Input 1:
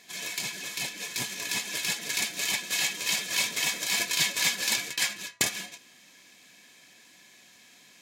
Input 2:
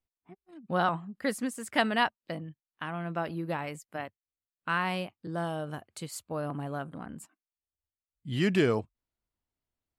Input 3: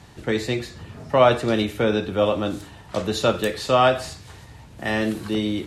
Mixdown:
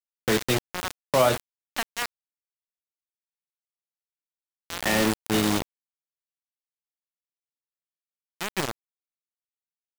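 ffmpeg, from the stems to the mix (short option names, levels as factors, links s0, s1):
-filter_complex "[0:a]adelay=2350,volume=0.141[s0];[1:a]volume=0.596[s1];[2:a]volume=0.891,asplit=3[s2][s3][s4];[s2]atrim=end=1.42,asetpts=PTS-STARTPTS,afade=t=out:st=1.416:d=0.004:c=hsin[s5];[s3]atrim=start=1.42:end=4.11,asetpts=PTS-STARTPTS,volume=0[s6];[s4]atrim=start=4.11,asetpts=PTS-STARTPTS,afade=t=in:d=0.004:c=hsin[s7];[s5][s6][s7]concat=n=3:v=0:a=1[s8];[s0][s1][s8]amix=inputs=3:normalize=0,acrusher=bits=3:mix=0:aa=0.000001,alimiter=limit=0.316:level=0:latency=1:release=309"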